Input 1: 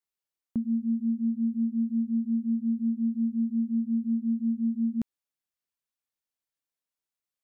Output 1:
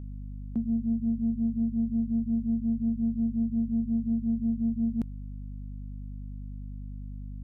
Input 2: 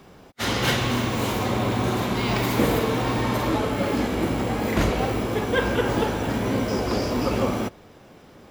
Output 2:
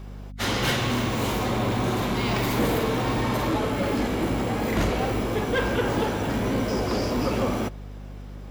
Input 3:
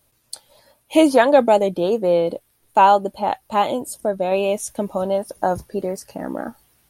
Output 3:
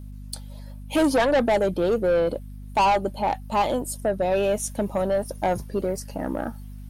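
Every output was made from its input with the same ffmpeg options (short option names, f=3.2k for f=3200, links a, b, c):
-af "aeval=exprs='(tanh(6.31*val(0)+0.1)-tanh(0.1))/6.31':c=same,aeval=exprs='val(0)+0.0141*(sin(2*PI*50*n/s)+sin(2*PI*2*50*n/s)/2+sin(2*PI*3*50*n/s)/3+sin(2*PI*4*50*n/s)/4+sin(2*PI*5*50*n/s)/5)':c=same"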